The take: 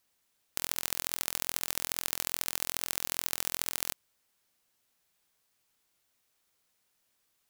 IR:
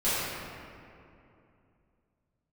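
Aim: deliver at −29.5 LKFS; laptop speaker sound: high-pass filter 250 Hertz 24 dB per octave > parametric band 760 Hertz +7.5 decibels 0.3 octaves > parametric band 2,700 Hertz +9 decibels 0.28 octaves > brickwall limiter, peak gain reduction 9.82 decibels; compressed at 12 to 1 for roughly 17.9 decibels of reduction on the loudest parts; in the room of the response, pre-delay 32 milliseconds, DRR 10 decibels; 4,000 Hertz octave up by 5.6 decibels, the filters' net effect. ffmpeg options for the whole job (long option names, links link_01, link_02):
-filter_complex "[0:a]equalizer=frequency=4000:width_type=o:gain=5,acompressor=threshold=-41dB:ratio=12,asplit=2[link_01][link_02];[1:a]atrim=start_sample=2205,adelay=32[link_03];[link_02][link_03]afir=irnorm=-1:irlink=0,volume=-23dB[link_04];[link_01][link_04]amix=inputs=2:normalize=0,highpass=frequency=250:width=0.5412,highpass=frequency=250:width=1.3066,equalizer=frequency=760:width_type=o:width=0.3:gain=7.5,equalizer=frequency=2700:width_type=o:width=0.28:gain=9,volume=23dB,alimiter=limit=-3dB:level=0:latency=1"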